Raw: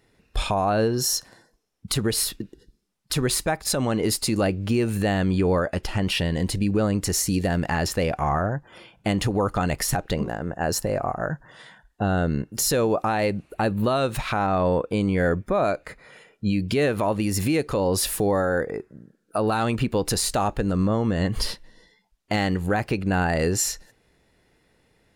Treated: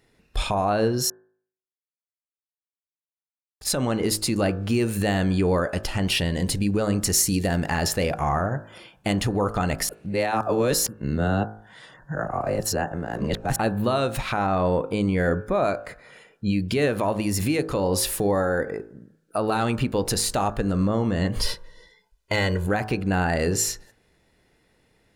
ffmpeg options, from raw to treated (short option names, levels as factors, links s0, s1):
-filter_complex "[0:a]asettb=1/sr,asplit=3[s0][s1][s2];[s0]atrim=end=4.704[s3];[s1]atrim=start=4.7:end=9.13,asetpts=PTS-STARTPTS,afade=t=in:d=0.004:c=qsin,afade=t=out:st=4.426:d=0.004:c=qsin,highshelf=f=4600:g=5.5[s4];[s2]atrim=start=9.126[s5];[s3][s4]acrossfade=d=0.004:c1=hsin:c2=qsin[s6];[s6][s5]acrossfade=d=0.004:c1=qsin:c2=hsin,asettb=1/sr,asplit=3[s7][s8][s9];[s7]atrim=end=21.434[s10];[s8]atrim=start=21.43:end=22.67,asetpts=PTS-STARTPTS,afade=t=in:d=0.004:c=qsin,afade=t=out:st=1.236:d=0.004:c=qsin,aecho=1:1:2:0.79,atrim=end_sample=54684[s11];[s9]atrim=start=22.666[s12];[s10][s11]acrossfade=d=0.004:c1=hsin:c2=qsin[s13];[s13][s12]acrossfade=d=0.004:c1=qsin:c2=hsin,asplit=5[s14][s15][s16][s17][s18];[s14]atrim=end=1.1,asetpts=PTS-STARTPTS,afade=t=out:st=1.096:d=0.004:c=hsin[s19];[s15]atrim=start=1.1:end=3.61,asetpts=PTS-STARTPTS,volume=0[s20];[s16]atrim=start=3.61:end=9.892,asetpts=PTS-STARTPTS,afade=t=in:d=0.004:c=hsin[s21];[s17]atrim=start=9.888:end=13.562,asetpts=PTS-STARTPTS,areverse[s22];[s18]atrim=start=13.558[s23];[s19][s20][s21]concat=n=3:v=0:a=1[s24];[s24][s22]acrossfade=d=0.004:c1=hsin:c2=hsin[s25];[s25][s23]acrossfade=d=0.004:c1=hsin:c2=hsin,bandreject=f=53.49:t=h:w=4,bandreject=f=106.98:t=h:w=4,bandreject=f=160.47:t=h:w=4,bandreject=f=213.96:t=h:w=4,bandreject=f=267.45:t=h:w=4,bandreject=f=320.94:t=h:w=4,bandreject=f=374.43:t=h:w=4,bandreject=f=427.92:t=h:w=4,bandreject=f=481.41:t=h:w=4,bandreject=f=534.9:t=h:w=4,bandreject=f=588.39:t=h:w=4,bandreject=f=641.88:t=h:w=4,bandreject=f=695.37:t=h:w=4,bandreject=f=748.86:t=h:w=4,bandreject=f=802.35:t=h:w=4,bandreject=f=855.84:t=h:w=4,bandreject=f=909.33:t=h:w=4,bandreject=f=962.82:t=h:w=4,bandreject=f=1016.31:t=h:w=4,bandreject=f=1069.8:t=h:w=4,bandreject=f=1123.29:t=h:w=4,bandreject=f=1176.78:t=h:w=4,bandreject=f=1230.27:t=h:w=4,bandreject=f=1283.76:t=h:w=4,bandreject=f=1337.25:t=h:w=4,bandreject=f=1390.74:t=h:w=4,bandreject=f=1444.23:t=h:w=4,bandreject=f=1497.72:t=h:w=4,bandreject=f=1551.21:t=h:w=4,bandreject=f=1604.7:t=h:w=4,bandreject=f=1658.19:t=h:w=4,bandreject=f=1711.68:t=h:w=4,bandreject=f=1765.17:t=h:w=4"